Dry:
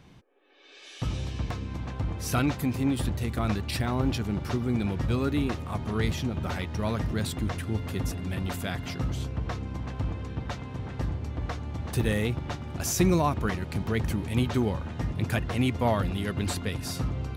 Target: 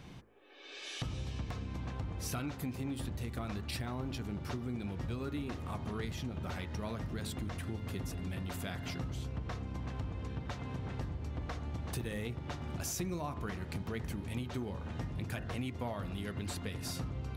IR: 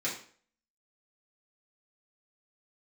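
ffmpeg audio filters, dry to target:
-af "bandreject=frequency=54.11:width_type=h:width=4,bandreject=frequency=108.22:width_type=h:width=4,bandreject=frequency=162.33:width_type=h:width=4,bandreject=frequency=216.44:width_type=h:width=4,bandreject=frequency=270.55:width_type=h:width=4,bandreject=frequency=324.66:width_type=h:width=4,bandreject=frequency=378.77:width_type=h:width=4,bandreject=frequency=432.88:width_type=h:width=4,bandreject=frequency=486.99:width_type=h:width=4,bandreject=frequency=541.1:width_type=h:width=4,bandreject=frequency=595.21:width_type=h:width=4,bandreject=frequency=649.32:width_type=h:width=4,bandreject=frequency=703.43:width_type=h:width=4,bandreject=frequency=757.54:width_type=h:width=4,bandreject=frequency=811.65:width_type=h:width=4,bandreject=frequency=865.76:width_type=h:width=4,bandreject=frequency=919.87:width_type=h:width=4,bandreject=frequency=973.98:width_type=h:width=4,bandreject=frequency=1028.09:width_type=h:width=4,bandreject=frequency=1082.2:width_type=h:width=4,bandreject=frequency=1136.31:width_type=h:width=4,bandreject=frequency=1190.42:width_type=h:width=4,bandreject=frequency=1244.53:width_type=h:width=4,bandreject=frequency=1298.64:width_type=h:width=4,bandreject=frequency=1352.75:width_type=h:width=4,bandreject=frequency=1406.86:width_type=h:width=4,bandreject=frequency=1460.97:width_type=h:width=4,bandreject=frequency=1515.08:width_type=h:width=4,bandreject=frequency=1569.19:width_type=h:width=4,bandreject=frequency=1623.3:width_type=h:width=4,bandreject=frequency=1677.41:width_type=h:width=4,bandreject=frequency=1731.52:width_type=h:width=4,bandreject=frequency=1785.63:width_type=h:width=4,bandreject=frequency=1839.74:width_type=h:width=4,bandreject=frequency=1893.85:width_type=h:width=4,bandreject=frequency=1947.96:width_type=h:width=4,bandreject=frequency=2002.07:width_type=h:width=4,bandreject=frequency=2056.18:width_type=h:width=4,acompressor=threshold=-40dB:ratio=5,volume=3dB"

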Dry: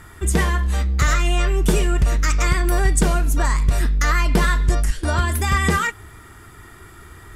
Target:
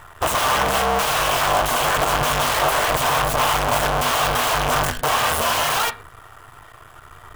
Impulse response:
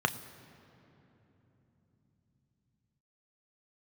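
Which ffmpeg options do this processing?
-filter_complex "[0:a]aeval=exprs='(mod(8.41*val(0)+1,2)-1)/8.41':channel_layout=same,acrusher=bits=6:dc=4:mix=0:aa=0.000001,asplit=2[link_01][link_02];[link_02]highpass=200,equalizer=frequency=290:width_type=q:width=4:gain=-6,equalizer=frequency=660:width_type=q:width=4:gain=9,equalizer=frequency=1100:width_type=q:width=4:gain=7,equalizer=frequency=1500:width_type=q:width=4:gain=7,equalizer=frequency=2800:width_type=q:width=4:gain=-3,lowpass=frequency=3500:width=0.5412,lowpass=frequency=3500:width=1.3066[link_03];[1:a]atrim=start_sample=2205,atrim=end_sample=6174[link_04];[link_03][link_04]afir=irnorm=-1:irlink=0,volume=-6.5dB[link_05];[link_01][link_05]amix=inputs=2:normalize=0,volume=-2dB"

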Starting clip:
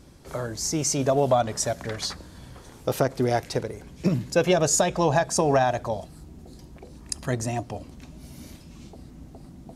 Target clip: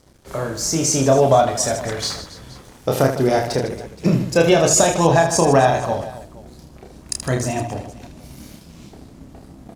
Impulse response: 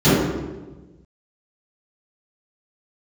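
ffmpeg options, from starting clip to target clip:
-filter_complex "[0:a]aeval=exprs='sgn(val(0))*max(abs(val(0))-0.00316,0)':channel_layout=same,asplit=2[link_01][link_02];[link_02]aecho=0:1:30|78|154.8|277.7|474.3:0.631|0.398|0.251|0.158|0.1[link_03];[link_01][link_03]amix=inputs=2:normalize=0,volume=5dB"

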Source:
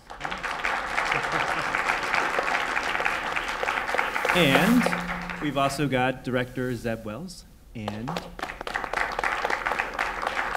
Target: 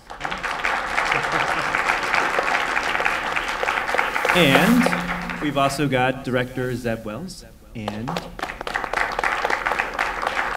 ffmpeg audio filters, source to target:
ffmpeg -i in.wav -filter_complex "[0:a]bandreject=frequency=50.83:width_type=h:width=4,bandreject=frequency=101.66:width_type=h:width=4,bandreject=frequency=152.49:width_type=h:width=4,bandreject=frequency=203.32:width_type=h:width=4,bandreject=frequency=254.15:width_type=h:width=4,asplit=2[link_01][link_02];[link_02]aecho=0:1:561:0.075[link_03];[link_01][link_03]amix=inputs=2:normalize=0,volume=4.5dB" out.wav

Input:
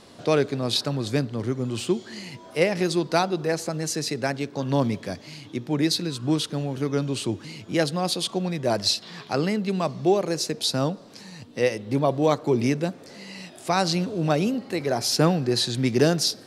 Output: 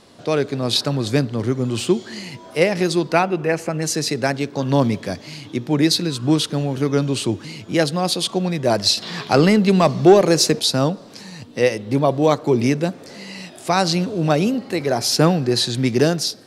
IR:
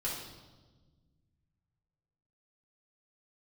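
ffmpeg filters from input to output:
-filter_complex "[0:a]dynaudnorm=framelen=110:gausssize=9:maxgain=6.5dB,asettb=1/sr,asplit=3[link_01][link_02][link_03];[link_01]atrim=end=3.124[link_04];[link_02]atrim=start=3.12:end=3.82,asetpts=PTS-STARTPTS,afade=type=in:duration=0.004:curve=qsin,afade=type=out:start_time=0.696:duration=0.004:curve=qsin,highshelf=frequency=3200:width_type=q:width=3:gain=-6[link_05];[link_03]atrim=start=3.816[link_06];[link_04][link_05]acrossfade=duration=0.004:curve1=hsin:curve2=qsin[link_07];[link_07][link_06]acrossfade=duration=0.004:curve1=qsin:curve2=hsin,asettb=1/sr,asplit=3[link_08][link_09][link_10];[link_08]atrim=end=8.974[link_11];[link_09]atrim=start=8.97:end=10.6,asetpts=PTS-STARTPTS,afade=type=in:duration=0.004:curve=qsin,afade=type=out:start_time=1.626:duration=0.004:curve=qsin,acontrast=42[link_12];[link_10]atrim=start=10.596[link_13];[link_11][link_12]acrossfade=duration=0.004:curve1=hsin:curve2=qsin[link_14];[link_14][link_13]acrossfade=duration=0.004:curve1=qsin:curve2=hsin"

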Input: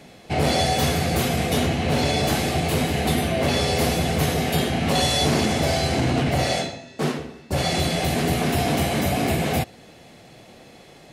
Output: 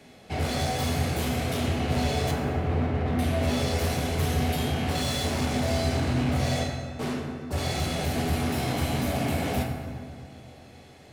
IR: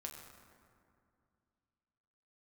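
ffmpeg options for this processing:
-filter_complex "[0:a]asettb=1/sr,asplit=3[link_01][link_02][link_03];[link_01]atrim=end=2.314[link_04];[link_02]atrim=start=2.31:end=3.19,asetpts=PTS-STARTPTS,afade=type=in:duration=0.004:curve=qsin,afade=type=out:start_time=0.876:duration=0.004:curve=qsin,lowpass=1600[link_05];[link_03]atrim=start=3.186[link_06];[link_04][link_05]acrossfade=duration=0.004:curve1=hsin:curve2=qsin[link_07];[link_07][link_06]acrossfade=duration=0.004:curve1=qsin:curve2=hsin,acrossover=split=120[link_08][link_09];[link_09]asoftclip=type=hard:threshold=-23dB[link_10];[link_08][link_10]amix=inputs=2:normalize=0[link_11];[1:a]atrim=start_sample=2205,asetrate=48510,aresample=44100[link_12];[link_11][link_12]afir=irnorm=-1:irlink=0"

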